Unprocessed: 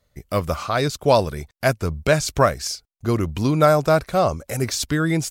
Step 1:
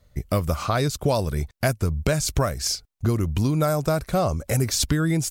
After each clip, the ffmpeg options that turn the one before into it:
ffmpeg -i in.wav -filter_complex "[0:a]lowshelf=frequency=210:gain=9,acrossover=split=6600[link_01][link_02];[link_01]acompressor=threshold=-22dB:ratio=6[link_03];[link_03][link_02]amix=inputs=2:normalize=0,volume=3dB" out.wav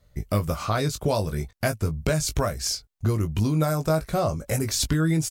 ffmpeg -i in.wav -filter_complex "[0:a]asplit=2[link_01][link_02];[link_02]adelay=19,volume=-7dB[link_03];[link_01][link_03]amix=inputs=2:normalize=0,volume=-2.5dB" out.wav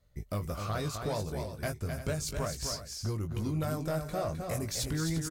ffmpeg -i in.wav -filter_complex "[0:a]asoftclip=type=tanh:threshold=-17dB,asplit=2[link_01][link_02];[link_02]aecho=0:1:237|259|346:0.106|0.501|0.237[link_03];[link_01][link_03]amix=inputs=2:normalize=0,volume=-8.5dB" out.wav

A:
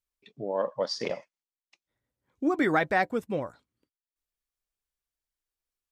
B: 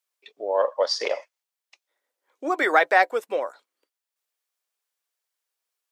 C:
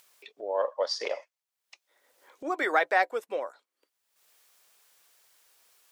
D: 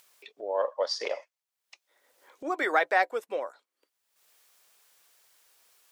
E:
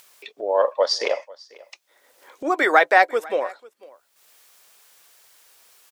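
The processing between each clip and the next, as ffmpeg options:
ffmpeg -i in.wav -af "highpass=frequency=450:width=0.5412,highpass=frequency=450:width=1.3066,volume=7.5dB" out.wav
ffmpeg -i in.wav -af "acompressor=mode=upward:threshold=-36dB:ratio=2.5,volume=-6dB" out.wav
ffmpeg -i in.wav -af anull out.wav
ffmpeg -i in.wav -af "aecho=1:1:494:0.0708,volume=9dB" out.wav

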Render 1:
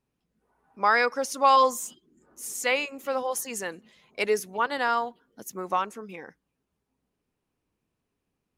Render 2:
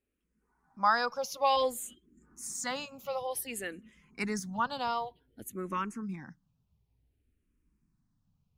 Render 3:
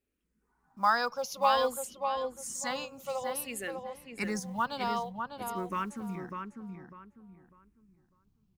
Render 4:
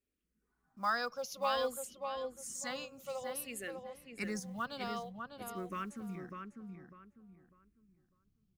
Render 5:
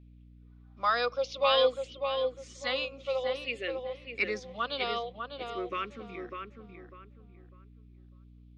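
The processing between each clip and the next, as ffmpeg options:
ffmpeg -i in.wav -filter_complex "[0:a]asubboost=boost=8.5:cutoff=170,asplit=2[link_01][link_02];[link_02]afreqshift=-0.55[link_03];[link_01][link_03]amix=inputs=2:normalize=1,volume=-2dB" out.wav
ffmpeg -i in.wav -filter_complex "[0:a]acrusher=bits=8:mode=log:mix=0:aa=0.000001,asplit=2[link_01][link_02];[link_02]adelay=599,lowpass=frequency=2000:poles=1,volume=-5dB,asplit=2[link_03][link_04];[link_04]adelay=599,lowpass=frequency=2000:poles=1,volume=0.3,asplit=2[link_05][link_06];[link_06]adelay=599,lowpass=frequency=2000:poles=1,volume=0.3,asplit=2[link_07][link_08];[link_08]adelay=599,lowpass=frequency=2000:poles=1,volume=0.3[link_09];[link_03][link_05][link_07][link_09]amix=inputs=4:normalize=0[link_10];[link_01][link_10]amix=inputs=2:normalize=0" out.wav
ffmpeg -i in.wav -af "equalizer=frequency=910:width_type=o:width=0.25:gain=-14,volume=-5dB" out.wav
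ffmpeg -i in.wav -af "highpass=frequency=310:width=0.5412,highpass=frequency=310:width=1.3066,equalizer=frequency=500:width_type=q:width=4:gain=3,equalizer=frequency=870:width_type=q:width=4:gain=-7,equalizer=frequency=1600:width_type=q:width=4:gain=-7,equalizer=frequency=2400:width_type=q:width=4:gain=6,equalizer=frequency=3500:width_type=q:width=4:gain=8,lowpass=frequency=4300:width=0.5412,lowpass=frequency=4300:width=1.3066,aeval=exprs='val(0)+0.000891*(sin(2*PI*60*n/s)+sin(2*PI*2*60*n/s)/2+sin(2*PI*3*60*n/s)/3+sin(2*PI*4*60*n/s)/4+sin(2*PI*5*60*n/s)/5)':channel_layout=same,volume=8.5dB" out.wav

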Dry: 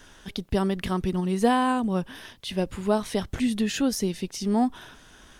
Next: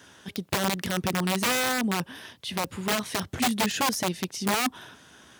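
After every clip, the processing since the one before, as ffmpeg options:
ffmpeg -i in.wav -af "aeval=exprs='(mod(8.91*val(0)+1,2)-1)/8.91':channel_layout=same,highpass=frequency=85:width=0.5412,highpass=frequency=85:width=1.3066" out.wav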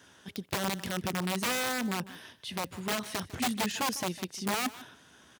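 ffmpeg -i in.wav -af "aecho=1:1:151:0.133,volume=-5.5dB" out.wav

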